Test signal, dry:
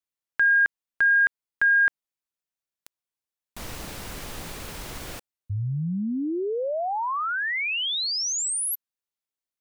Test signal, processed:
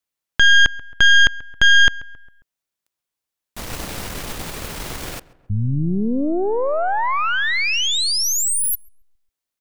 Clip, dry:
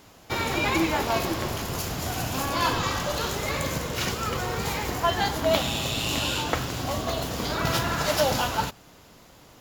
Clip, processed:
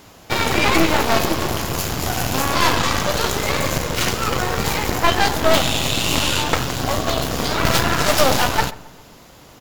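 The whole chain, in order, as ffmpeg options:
-filter_complex "[0:a]aeval=exprs='0.501*(cos(1*acos(clip(val(0)/0.501,-1,1)))-cos(1*PI/2))+0.0126*(cos(3*acos(clip(val(0)/0.501,-1,1)))-cos(3*PI/2))+0.1*(cos(5*acos(clip(val(0)/0.501,-1,1)))-cos(5*PI/2))+0.158*(cos(8*acos(clip(val(0)/0.501,-1,1)))-cos(8*PI/2))':c=same,asplit=2[a][b];[b]adelay=135,lowpass=f=1.9k:p=1,volume=-19dB,asplit=2[c][d];[d]adelay=135,lowpass=f=1.9k:p=1,volume=0.51,asplit=2[e][f];[f]adelay=135,lowpass=f=1.9k:p=1,volume=0.51,asplit=2[g][h];[h]adelay=135,lowpass=f=1.9k:p=1,volume=0.51[i];[a][c][e][g][i]amix=inputs=5:normalize=0,volume=1dB"

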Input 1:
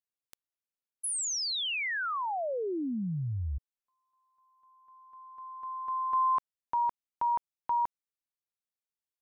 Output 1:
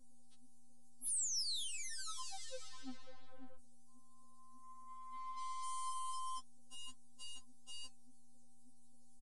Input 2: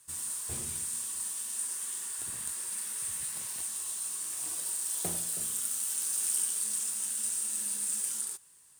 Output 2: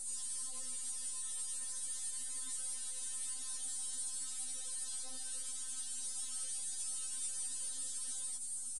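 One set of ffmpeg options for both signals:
-filter_complex "[0:a]aemphasis=mode=production:type=75fm,acrossover=split=4700[a][b];[b]acompressor=threshold=-32dB:ratio=4:attack=1:release=60[c];[a][c]amix=inputs=2:normalize=0,lowshelf=f=140:g=2.5,acrossover=split=2900[d][e];[e]acompressor=threshold=-48dB:ratio=5:attack=2.9:release=148:detection=peak[f];[d][f]amix=inputs=2:normalize=0,aeval=exprs='val(0)+0.00282*(sin(2*PI*60*n/s)+sin(2*PI*2*60*n/s)/2+sin(2*PI*3*60*n/s)/3+sin(2*PI*4*60*n/s)/4+sin(2*PI*5*60*n/s)/5)':c=same,aeval=exprs='(tanh(398*val(0)+0.7)-tanh(0.7))/398':c=same,aexciter=amount=6.2:drive=3.7:freq=3.5k,flanger=delay=5.8:depth=4.6:regen=61:speed=1.7:shape=sinusoidal,aresample=22050,aresample=44100,afftfilt=real='re*3.46*eq(mod(b,12),0)':imag='im*3.46*eq(mod(b,12),0)':win_size=2048:overlap=0.75,volume=5.5dB"

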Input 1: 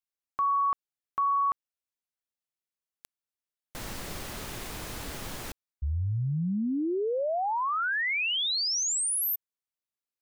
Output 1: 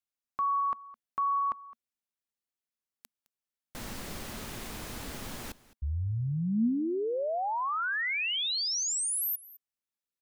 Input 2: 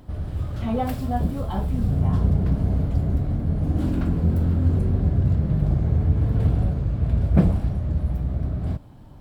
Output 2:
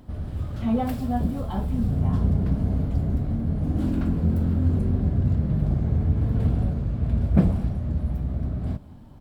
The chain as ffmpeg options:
-filter_complex "[0:a]equalizer=f=230:t=o:w=0.32:g=6.5,asplit=2[a][b];[b]aecho=0:1:212:0.1[c];[a][c]amix=inputs=2:normalize=0,volume=-2.5dB"

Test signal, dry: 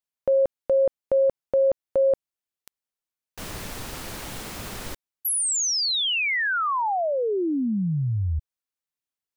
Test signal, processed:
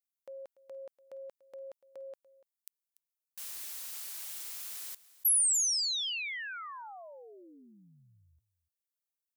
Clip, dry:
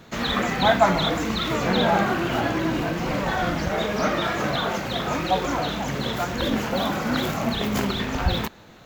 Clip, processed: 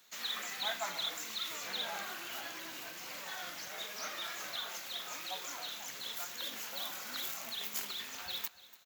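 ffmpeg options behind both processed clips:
-filter_complex "[0:a]aderivative,asplit=2[a][b];[b]aecho=0:1:290:0.119[c];[a][c]amix=inputs=2:normalize=0,volume=-3.5dB"

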